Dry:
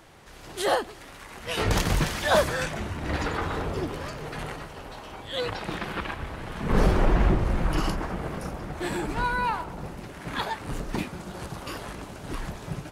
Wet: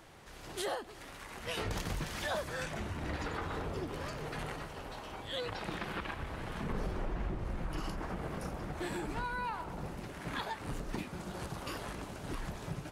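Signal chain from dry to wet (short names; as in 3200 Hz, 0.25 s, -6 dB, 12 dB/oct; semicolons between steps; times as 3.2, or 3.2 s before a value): compressor 4:1, threshold -31 dBFS, peak gain reduction 13 dB; gain -4 dB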